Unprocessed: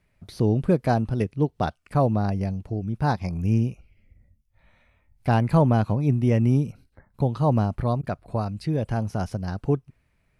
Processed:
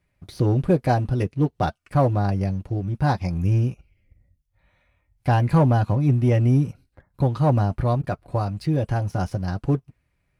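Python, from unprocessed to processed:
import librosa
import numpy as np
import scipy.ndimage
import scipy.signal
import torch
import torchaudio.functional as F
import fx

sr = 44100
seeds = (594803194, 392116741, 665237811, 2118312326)

y = fx.leveller(x, sr, passes=1)
y = fx.notch_comb(y, sr, f0_hz=220.0)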